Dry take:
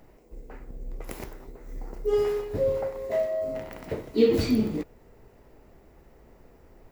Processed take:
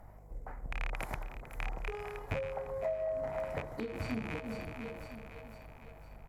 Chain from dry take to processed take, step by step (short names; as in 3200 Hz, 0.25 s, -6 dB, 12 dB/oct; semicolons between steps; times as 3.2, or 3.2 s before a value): rattling part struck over -35 dBFS, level -18 dBFS; in parallel at -11 dB: crossover distortion -34.5 dBFS; on the sum: notch 2700 Hz, Q 9.6; tempo 1.1×; three-band isolator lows -13 dB, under 350 Hz, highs -14 dB, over 2400 Hz; on a send: split-band echo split 480 Hz, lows 0.333 s, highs 0.504 s, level -13 dB; on the sum: compressor 12:1, threshold -33 dBFS, peak gain reduction 18 dB; hum 50 Hz, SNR 26 dB; EQ curve 140 Hz 0 dB, 410 Hz -20 dB, 710 Hz -7 dB, 3200 Hz -14 dB, 12000 Hz +2 dB; treble ducked by the level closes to 2200 Hz, closed at -33.5 dBFS; gain +11.5 dB